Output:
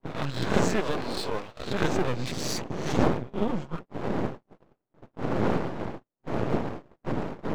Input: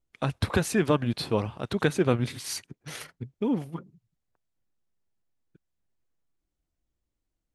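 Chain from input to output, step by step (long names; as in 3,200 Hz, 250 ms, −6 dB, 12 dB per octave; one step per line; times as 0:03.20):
peak hold with a rise ahead of every peak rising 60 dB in 0.54 s
wind on the microphone 410 Hz −27 dBFS
camcorder AGC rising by 15 dB per second
brick-wall band-pass 100–8,100 Hz
noise gate −31 dBFS, range −44 dB
0:00.80–0:01.67: bass and treble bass −9 dB, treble +1 dB
0:03.32–0:03.75: comb filter 5.5 ms, depth 72%
half-wave rectification
0:02.19–0:02.62: envelope flattener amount 50%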